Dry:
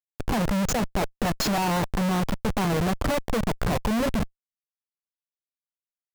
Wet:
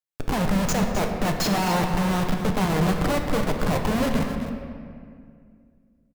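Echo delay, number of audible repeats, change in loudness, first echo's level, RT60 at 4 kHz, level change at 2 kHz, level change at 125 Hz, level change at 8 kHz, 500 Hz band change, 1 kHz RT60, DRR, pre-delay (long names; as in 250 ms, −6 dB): 261 ms, 1, +2.0 dB, −10.5 dB, 1.3 s, +2.0 dB, +2.5 dB, +1.0 dB, +2.0 dB, 2.0 s, 2.0 dB, 5 ms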